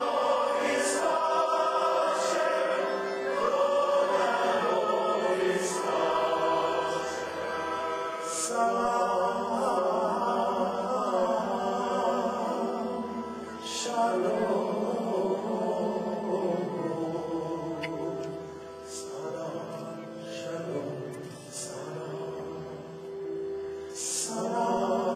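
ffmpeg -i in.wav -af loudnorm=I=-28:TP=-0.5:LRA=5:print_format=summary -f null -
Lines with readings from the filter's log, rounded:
Input Integrated:    -29.4 LUFS
Input True Peak:     -13.8 dBTP
Input LRA:             9.9 LU
Input Threshold:     -39.6 LUFS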